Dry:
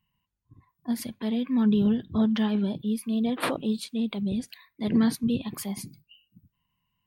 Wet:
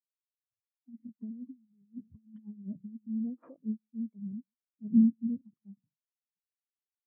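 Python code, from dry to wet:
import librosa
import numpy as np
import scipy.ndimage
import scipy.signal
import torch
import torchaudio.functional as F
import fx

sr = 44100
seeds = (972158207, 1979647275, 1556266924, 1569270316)

y = scipy.signal.sosfilt(scipy.signal.butter(2, 2100.0, 'lowpass', fs=sr, output='sos'), x)
y = y + 10.0 ** (-22.5 / 20.0) * np.pad(y, (int(142 * sr / 1000.0), 0))[:len(y)]
y = fx.over_compress(y, sr, threshold_db=-29.0, ratio=-0.5, at=(0.89, 3.08))
y = fx.spectral_expand(y, sr, expansion=2.5)
y = F.gain(torch.from_numpy(y), -1.5).numpy()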